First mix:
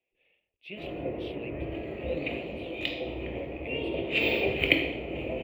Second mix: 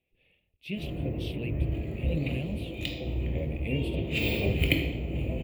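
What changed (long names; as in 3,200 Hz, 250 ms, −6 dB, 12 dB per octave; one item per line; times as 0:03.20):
background −6.5 dB
master: remove three-way crossover with the lows and the highs turned down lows −18 dB, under 330 Hz, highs −18 dB, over 3,500 Hz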